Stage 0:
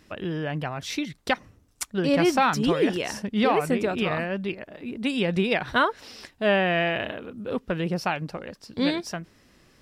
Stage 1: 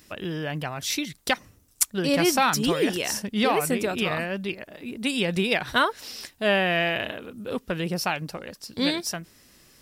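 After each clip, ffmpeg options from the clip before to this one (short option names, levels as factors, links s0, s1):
-af "aemphasis=mode=production:type=75kf,volume=0.841"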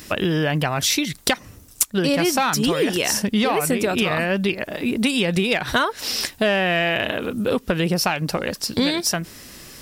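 -af "aeval=exprs='0.891*sin(PI/2*2.51*val(0)/0.891)':c=same,acompressor=threshold=0.1:ratio=6,volume=1.33"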